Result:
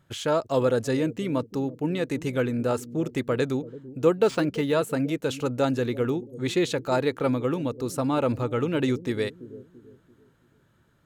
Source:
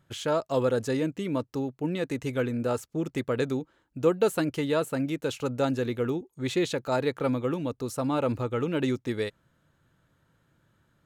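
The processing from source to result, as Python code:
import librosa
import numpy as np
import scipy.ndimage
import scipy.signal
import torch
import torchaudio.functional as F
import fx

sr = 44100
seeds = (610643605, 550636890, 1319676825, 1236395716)

y = fx.echo_bbd(x, sr, ms=336, stages=1024, feedback_pct=40, wet_db=-14.5)
y = fx.resample_linear(y, sr, factor=3, at=(4.17, 4.73))
y = F.gain(torch.from_numpy(y), 2.5).numpy()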